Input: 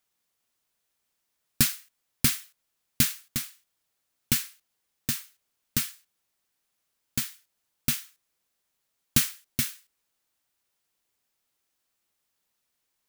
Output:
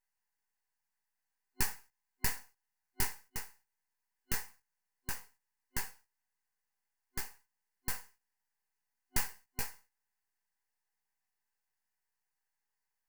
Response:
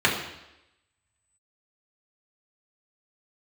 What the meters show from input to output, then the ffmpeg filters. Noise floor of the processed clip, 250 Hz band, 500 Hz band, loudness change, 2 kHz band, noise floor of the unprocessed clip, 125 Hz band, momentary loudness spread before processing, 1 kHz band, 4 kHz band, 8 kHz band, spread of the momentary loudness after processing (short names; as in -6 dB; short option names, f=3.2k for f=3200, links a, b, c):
under -85 dBFS, -17.0 dB, -4.5 dB, -12.0 dB, -6.5 dB, -79 dBFS, -13.5 dB, 11 LU, -0.5 dB, -14.5 dB, -12.0 dB, 10 LU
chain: -af "flanger=delay=15:depth=7.3:speed=0.54,aeval=exprs='abs(val(0))':c=same,superequalizer=6b=0.282:8b=0.447:9b=2.51:11b=2.51:13b=0.355,volume=-5dB"